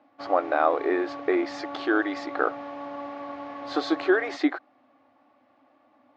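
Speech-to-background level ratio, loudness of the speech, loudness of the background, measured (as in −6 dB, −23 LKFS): 11.5 dB, −26.5 LKFS, −38.0 LKFS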